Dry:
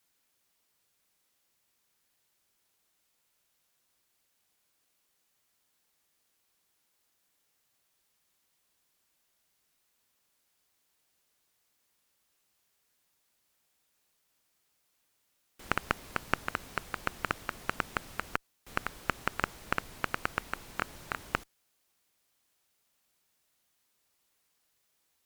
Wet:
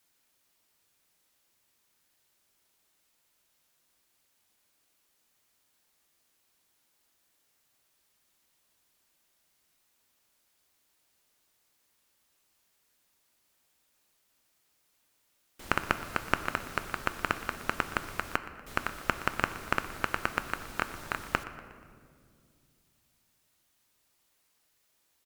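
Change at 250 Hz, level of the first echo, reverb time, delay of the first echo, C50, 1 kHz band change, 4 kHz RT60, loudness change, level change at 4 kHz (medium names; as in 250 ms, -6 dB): +3.5 dB, -17.5 dB, 2.1 s, 120 ms, 11.0 dB, +3.0 dB, 1.0 s, +3.0 dB, +3.0 dB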